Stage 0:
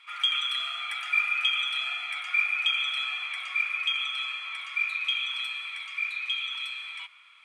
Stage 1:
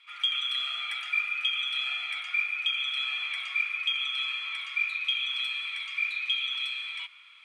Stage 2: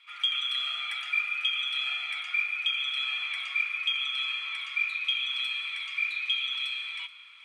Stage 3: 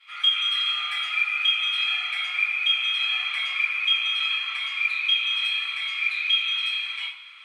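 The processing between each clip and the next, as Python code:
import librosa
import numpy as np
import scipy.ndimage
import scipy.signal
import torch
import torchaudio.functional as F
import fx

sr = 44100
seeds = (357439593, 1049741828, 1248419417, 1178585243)

y1 = fx.curve_eq(x, sr, hz=(1100.0, 3500.0, 8600.0), db=(0, 7, 1))
y1 = fx.rider(y1, sr, range_db=3, speed_s=0.5)
y1 = y1 * librosa.db_to_amplitude(-6.0)
y2 = y1 + 10.0 ** (-18.5 / 20.0) * np.pad(y1, (int(429 * sr / 1000.0), 0))[:len(y1)]
y3 = fx.room_shoebox(y2, sr, seeds[0], volume_m3=39.0, walls='mixed', distance_m=2.2)
y3 = y3 * librosa.db_to_amplitude(-5.0)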